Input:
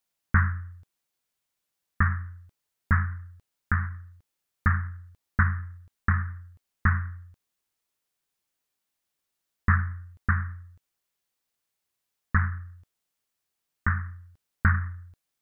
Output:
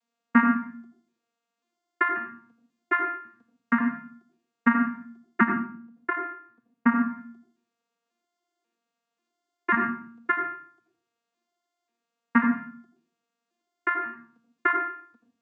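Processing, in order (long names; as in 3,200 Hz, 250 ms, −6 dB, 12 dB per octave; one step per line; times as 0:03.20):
vocoder with an arpeggio as carrier bare fifth, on A#3, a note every 540 ms
0:05.45–0:07.09: high-shelf EQ 2,200 Hz −9 dB
on a send: convolution reverb RT60 0.45 s, pre-delay 77 ms, DRR 6 dB
on the sum: level +5.5 dB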